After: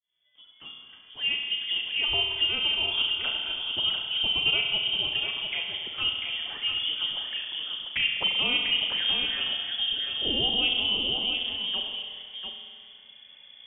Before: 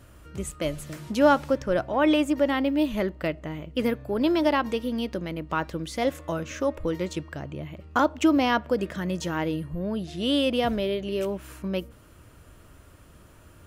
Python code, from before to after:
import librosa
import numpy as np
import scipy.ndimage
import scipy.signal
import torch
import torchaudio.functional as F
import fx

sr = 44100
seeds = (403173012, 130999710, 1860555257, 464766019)

y = fx.fade_in_head(x, sr, length_s=2.6)
y = fx.peak_eq(y, sr, hz=300.0, db=-7.5, octaves=0.24)
y = fx.env_flanger(y, sr, rest_ms=3.7, full_db=-24.0)
y = y + 10.0 ** (-6.0 / 20.0) * np.pad(y, (int(694 * sr / 1000.0), 0))[:len(y)]
y = fx.rev_spring(y, sr, rt60_s=2.0, pass_ms=(33,), chirp_ms=55, drr_db=2.0)
y = fx.freq_invert(y, sr, carrier_hz=3400)
y = y * 10.0 ** (-2.0 / 20.0)